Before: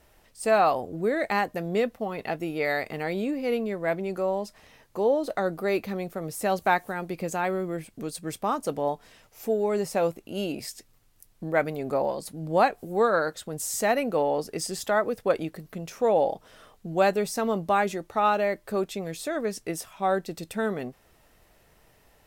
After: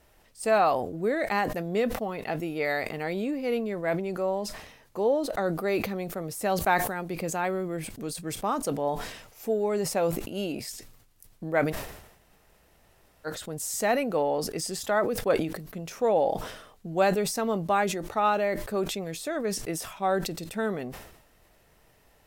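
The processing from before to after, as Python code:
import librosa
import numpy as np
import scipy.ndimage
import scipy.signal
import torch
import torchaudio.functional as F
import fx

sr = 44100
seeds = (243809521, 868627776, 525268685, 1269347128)

y = fx.edit(x, sr, fx.room_tone_fill(start_s=11.71, length_s=1.55, crossfade_s=0.04), tone=tone)
y = fx.sustainer(y, sr, db_per_s=67.0)
y = y * librosa.db_to_amplitude(-1.5)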